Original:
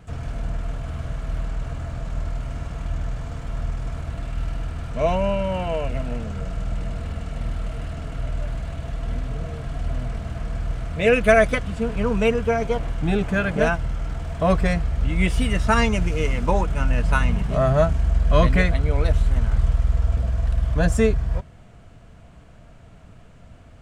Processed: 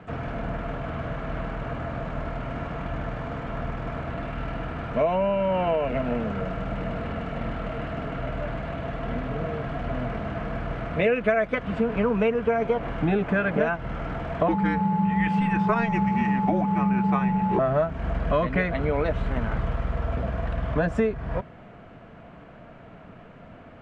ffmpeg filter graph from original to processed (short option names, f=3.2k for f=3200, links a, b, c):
-filter_complex "[0:a]asettb=1/sr,asplit=3[a][b][c];[a]atrim=end=14.484[d];[b]atrim=start=14.48:end=17.59,asetpts=PTS-STARTPTS,afade=t=in:d=0.004:c=qsin,afade=t=out:st=3.106:d=0.004:c=qsin,aeval=exprs='val(0)+0.0447*sin(2*PI*1100*n/s)':c=same,afreqshift=-240[e];[c]atrim=start=17.586[f];[d][e]acrossfade=d=0.004:c1=hsin:c2=qsin[g];[g][f]acrossfade=d=0.004:c1=qsin:c2=hsin,lowpass=6.8k,acrossover=split=160 2800:gain=0.158 1 0.1[h][i][j];[h][i][j]amix=inputs=3:normalize=0,acompressor=threshold=-27dB:ratio=6,volume=7dB"